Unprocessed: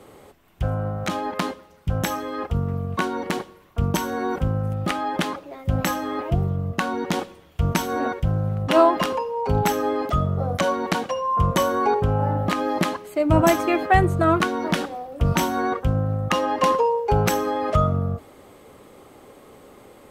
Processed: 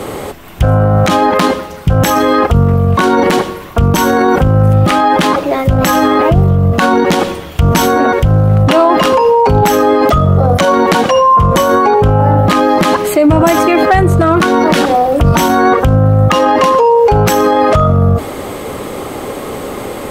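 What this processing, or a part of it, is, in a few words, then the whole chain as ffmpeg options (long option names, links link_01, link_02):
loud club master: -af "acompressor=threshold=-21dB:ratio=2.5,asoftclip=type=hard:threshold=-14.5dB,alimiter=level_in=26dB:limit=-1dB:release=50:level=0:latency=1,volume=-1dB"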